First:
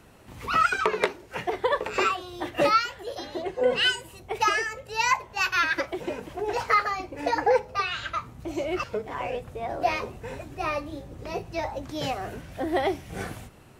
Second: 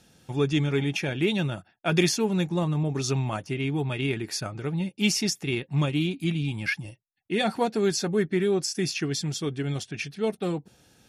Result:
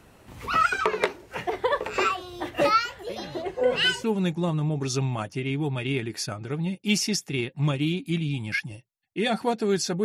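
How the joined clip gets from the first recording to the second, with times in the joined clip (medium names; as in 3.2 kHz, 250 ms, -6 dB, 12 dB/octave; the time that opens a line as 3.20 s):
first
3.09 s: add second from 1.23 s 0.95 s -16.5 dB
4.04 s: go over to second from 2.18 s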